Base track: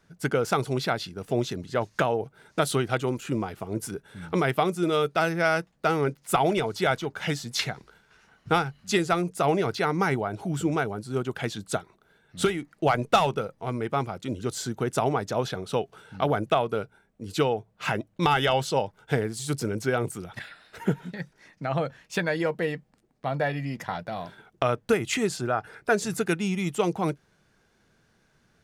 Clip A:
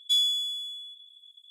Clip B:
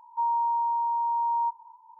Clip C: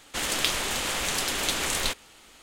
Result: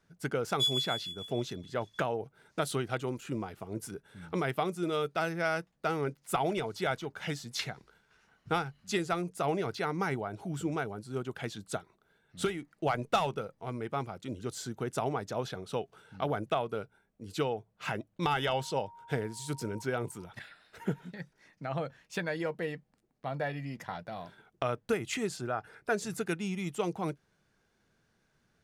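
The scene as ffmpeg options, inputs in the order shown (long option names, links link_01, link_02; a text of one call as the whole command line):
ffmpeg -i bed.wav -i cue0.wav -i cue1.wav -filter_complex "[0:a]volume=-7.5dB[link_01];[1:a]tremolo=f=6.8:d=0.76[link_02];[2:a]bandreject=frequency=940:width=7.3[link_03];[link_02]atrim=end=1.5,asetpts=PTS-STARTPTS,volume=-3.5dB,afade=type=in:duration=0.004:curve=hsin,afade=type=out:start_time=1.496:duration=0.004:curve=hsin,adelay=500[link_04];[link_03]atrim=end=1.99,asetpts=PTS-STARTPTS,volume=-3dB,afade=type=in:duration=0.004:curve=hsin,afade=type=out:start_time=1.986:duration=0.004:curve=hsin,adelay=18300[link_05];[link_01][link_04][link_05]amix=inputs=3:normalize=0" out.wav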